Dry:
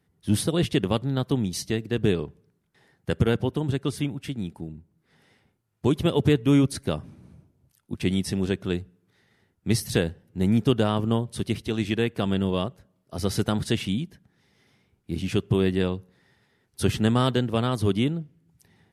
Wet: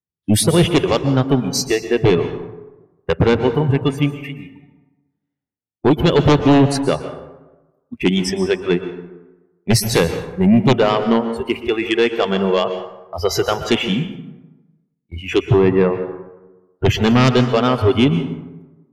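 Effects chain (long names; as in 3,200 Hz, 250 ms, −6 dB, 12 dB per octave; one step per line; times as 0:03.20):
0:15.48–0:16.84: low-pass filter 2,700 Hz → 1,000 Hz 12 dB per octave
noise reduction from a noise print of the clip's start 22 dB
noise gate −50 dBFS, range −17 dB
sine wavefolder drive 9 dB, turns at −7.5 dBFS
dense smooth reverb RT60 1.1 s, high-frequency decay 0.55×, pre-delay 110 ms, DRR 9 dB
one half of a high-frequency compander decoder only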